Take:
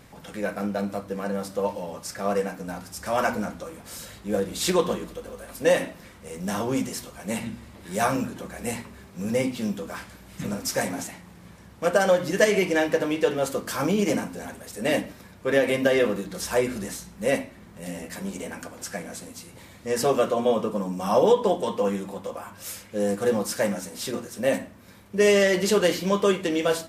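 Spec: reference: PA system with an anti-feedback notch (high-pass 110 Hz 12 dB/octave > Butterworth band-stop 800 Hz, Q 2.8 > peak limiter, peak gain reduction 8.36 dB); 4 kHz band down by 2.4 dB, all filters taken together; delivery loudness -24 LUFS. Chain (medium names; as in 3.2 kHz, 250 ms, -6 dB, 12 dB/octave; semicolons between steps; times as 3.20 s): high-pass 110 Hz 12 dB/octave; Butterworth band-stop 800 Hz, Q 2.8; peaking EQ 4 kHz -3.5 dB; trim +5 dB; peak limiter -11.5 dBFS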